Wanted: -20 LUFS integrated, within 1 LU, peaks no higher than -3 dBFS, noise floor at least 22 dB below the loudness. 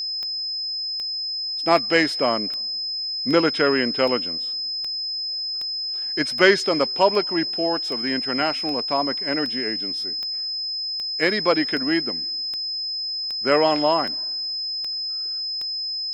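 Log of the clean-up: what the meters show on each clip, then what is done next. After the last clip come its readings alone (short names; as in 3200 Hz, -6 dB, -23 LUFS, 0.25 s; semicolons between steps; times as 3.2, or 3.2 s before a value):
clicks 21; steady tone 5100 Hz; tone level -25 dBFS; loudness -22.0 LUFS; peak -2.0 dBFS; loudness target -20.0 LUFS
-> de-click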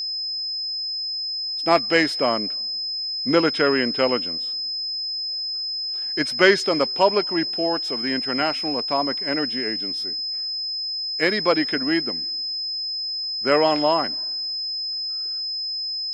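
clicks 0; steady tone 5100 Hz; tone level -25 dBFS
-> notch 5100 Hz, Q 30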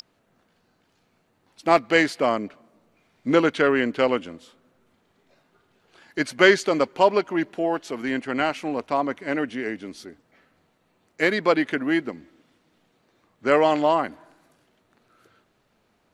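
steady tone none; loudness -22.5 LUFS; peak -2.5 dBFS; loudness target -20.0 LUFS
-> gain +2.5 dB; limiter -3 dBFS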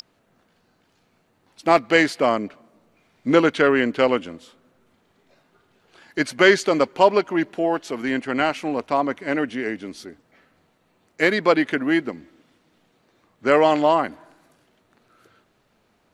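loudness -20.5 LUFS; peak -3.0 dBFS; noise floor -65 dBFS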